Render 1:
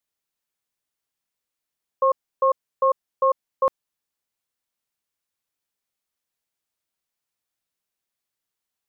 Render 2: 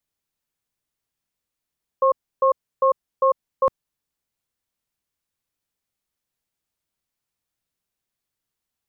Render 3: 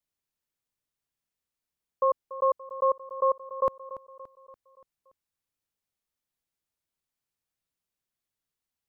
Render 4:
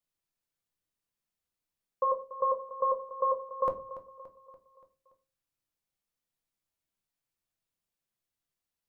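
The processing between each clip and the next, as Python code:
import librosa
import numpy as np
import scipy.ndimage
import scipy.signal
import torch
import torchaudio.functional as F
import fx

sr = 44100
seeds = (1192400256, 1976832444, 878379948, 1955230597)

y1 = fx.low_shelf(x, sr, hz=240.0, db=9.5)
y2 = fx.echo_feedback(y1, sr, ms=287, feedback_pct=52, wet_db=-15)
y2 = y2 * librosa.db_to_amplitude(-5.5)
y3 = fx.room_shoebox(y2, sr, seeds[0], volume_m3=120.0, walls='furnished', distance_m=0.75)
y3 = y3 * librosa.db_to_amplitude(-2.5)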